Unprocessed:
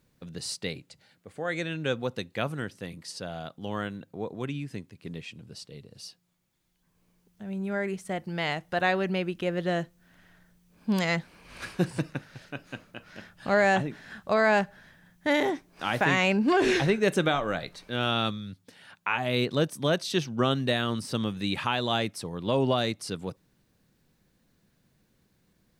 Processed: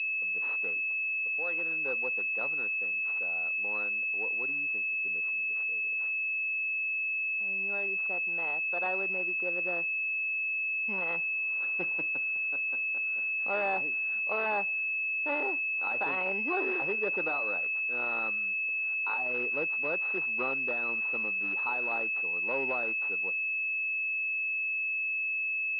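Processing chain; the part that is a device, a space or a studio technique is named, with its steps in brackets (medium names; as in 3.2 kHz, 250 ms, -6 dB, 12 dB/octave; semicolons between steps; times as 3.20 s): toy sound module (decimation joined by straight lines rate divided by 6×; class-D stage that switches slowly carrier 2.6 kHz; cabinet simulation 640–4800 Hz, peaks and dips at 660 Hz -9 dB, 1.1 kHz -4 dB, 1.7 kHz -7 dB, 2.7 kHz +6 dB, 4 kHz +6 dB)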